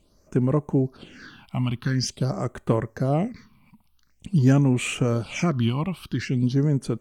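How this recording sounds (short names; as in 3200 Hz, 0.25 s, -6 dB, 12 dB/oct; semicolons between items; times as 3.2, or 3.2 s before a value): phasing stages 6, 0.47 Hz, lowest notch 420–4900 Hz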